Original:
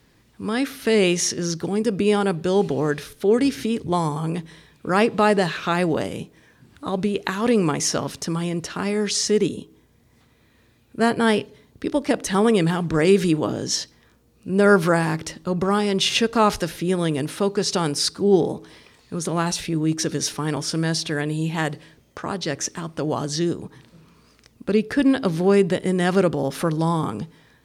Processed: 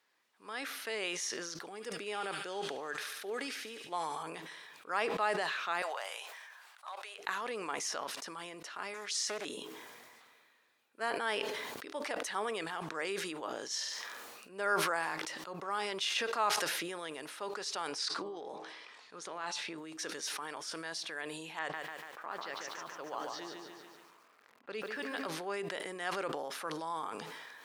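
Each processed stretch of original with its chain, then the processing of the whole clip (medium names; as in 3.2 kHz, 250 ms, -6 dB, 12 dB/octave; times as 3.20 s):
1.70–4.23 s: band-stop 1 kHz, Q 15 + feedback echo behind a high-pass 72 ms, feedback 60%, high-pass 2 kHz, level -7 dB
5.82–7.19 s: high-pass 670 Hz 24 dB/octave + overload inside the chain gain 23.5 dB
8.94–9.45 s: tilt EQ +1.5 dB/octave + loudspeaker Doppler distortion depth 0.32 ms
13.65–14.49 s: high-pass 61 Hz + peaking EQ 190 Hz -5.5 dB 2.8 oct + flutter echo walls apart 8.2 m, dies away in 0.38 s
17.88–19.78 s: low-pass 6.4 kHz + compressor with a negative ratio -23 dBFS, ratio -0.5 + de-hum 79.23 Hz, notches 15
21.59–25.27 s: level-controlled noise filter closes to 1.7 kHz, open at -15 dBFS + upward compressor, threshold -38 dBFS + bit-crushed delay 144 ms, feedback 55%, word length 8-bit, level -4 dB
whole clip: high-pass 920 Hz 12 dB/octave; treble shelf 2.3 kHz -8 dB; decay stretcher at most 26 dB/s; trim -8.5 dB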